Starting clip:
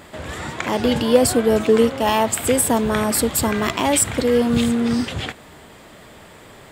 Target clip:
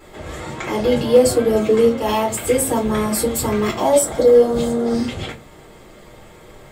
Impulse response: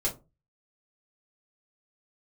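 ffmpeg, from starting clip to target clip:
-filter_complex "[0:a]asettb=1/sr,asplit=3[s0][s1][s2];[s0]atrim=end=3.774[s3];[s1]atrim=start=3.77:end=4.94,asetpts=PTS-STARTPTS,afade=t=in:d=0.004:c=qsin,afade=t=out:st=1.166:d=0.004:c=qsin,equalizer=f=100:t=o:w=0.67:g=-11,equalizer=f=630:t=o:w=0.67:g=10,equalizer=f=2500:t=o:w=0.67:g=-10[s4];[s2]atrim=start=4.936[s5];[s3][s4]acrossfade=d=0.004:c1=hsin:c2=qsin[s6];[s6][s5]acrossfade=d=0.004:c1=qsin:c2=hsin[s7];[1:a]atrim=start_sample=2205[s8];[s7][s8]afir=irnorm=-1:irlink=0,volume=0.422"

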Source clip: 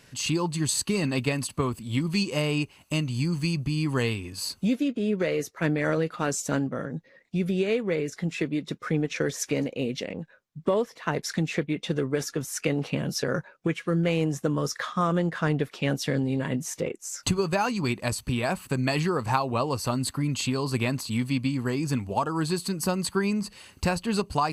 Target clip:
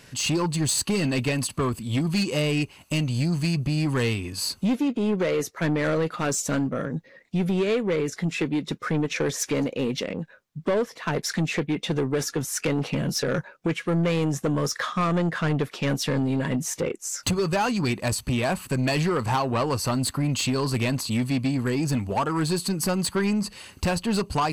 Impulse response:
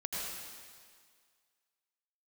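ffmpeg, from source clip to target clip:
-af "asoftclip=type=tanh:threshold=0.0708,volume=1.78"

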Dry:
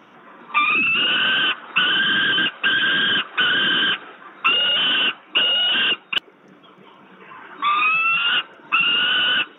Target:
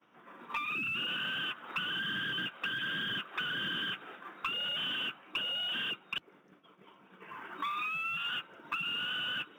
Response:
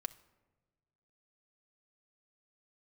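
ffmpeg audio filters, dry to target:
-filter_complex "[0:a]agate=range=0.0224:threshold=0.01:ratio=3:detection=peak,acrossover=split=170[s0][s1];[s1]acompressor=threshold=0.0398:ratio=6[s2];[s0][s2]amix=inputs=2:normalize=0,aeval=exprs='0.15*(cos(1*acos(clip(val(0)/0.15,-1,1)))-cos(1*PI/2))+0.0168*(cos(2*acos(clip(val(0)/0.15,-1,1)))-cos(2*PI/2))+0.000944*(cos(3*acos(clip(val(0)/0.15,-1,1)))-cos(3*PI/2))+0.00473*(cos(4*acos(clip(val(0)/0.15,-1,1)))-cos(4*PI/2))+0.00266*(cos(5*acos(clip(val(0)/0.15,-1,1)))-cos(5*PI/2))':c=same,acrusher=bits=8:mode=log:mix=0:aa=0.000001,volume=0.473"

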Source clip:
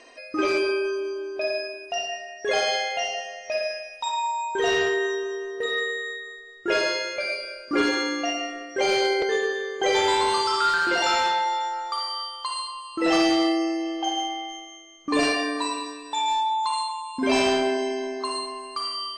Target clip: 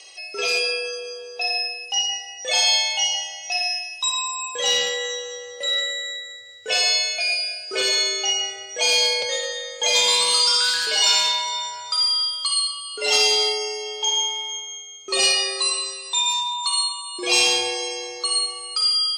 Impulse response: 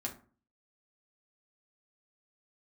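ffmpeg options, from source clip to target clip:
-af "aexciter=amount=7.2:drive=3.9:freq=2300,afreqshift=96,volume=0.531"

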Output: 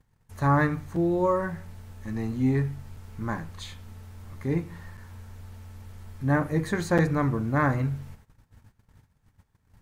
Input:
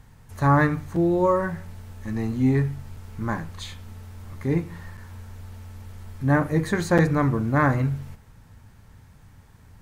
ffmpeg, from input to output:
-af "agate=range=0.158:threshold=0.00447:ratio=16:detection=peak,volume=0.668"

